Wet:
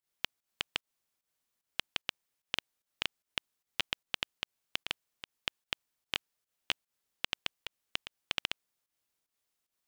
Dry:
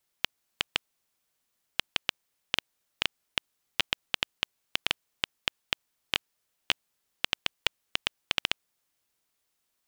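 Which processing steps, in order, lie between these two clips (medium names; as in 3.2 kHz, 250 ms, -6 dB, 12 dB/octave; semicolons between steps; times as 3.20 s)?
volume shaper 149 bpm, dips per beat 1, -14 dB, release 130 ms; trim -5.5 dB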